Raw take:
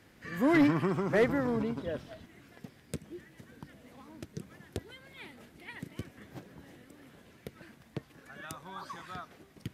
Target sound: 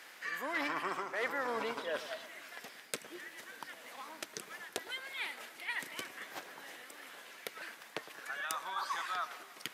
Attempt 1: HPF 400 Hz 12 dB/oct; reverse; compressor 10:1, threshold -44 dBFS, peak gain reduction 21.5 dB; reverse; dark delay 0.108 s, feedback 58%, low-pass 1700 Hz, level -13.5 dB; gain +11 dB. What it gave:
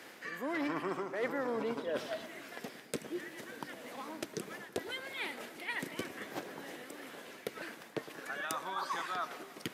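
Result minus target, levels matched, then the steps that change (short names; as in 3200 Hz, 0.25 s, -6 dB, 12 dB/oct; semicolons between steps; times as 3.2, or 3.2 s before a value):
500 Hz band +3.5 dB
change: HPF 890 Hz 12 dB/oct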